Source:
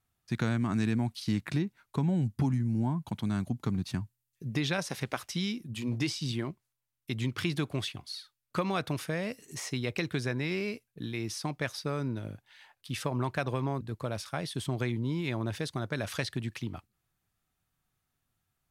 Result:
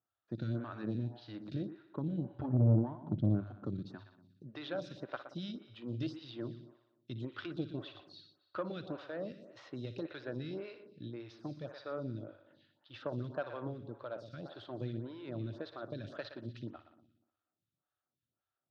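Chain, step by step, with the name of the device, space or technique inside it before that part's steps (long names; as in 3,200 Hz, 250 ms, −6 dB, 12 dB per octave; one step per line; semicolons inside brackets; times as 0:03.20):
0:02.33–0:03.44: RIAA equalisation playback
echo machine with several playback heads 60 ms, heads first and second, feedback 52%, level −14 dB
vibe pedal into a guitar amplifier (phaser with staggered stages 1.8 Hz; tube saturation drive 20 dB, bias 0.75; loudspeaker in its box 100–4,300 Hz, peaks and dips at 110 Hz +6 dB, 320 Hz +7 dB, 580 Hz +9 dB, 1,400 Hz +6 dB, 2,200 Hz −9 dB, 3,800 Hz +4 dB)
level −5 dB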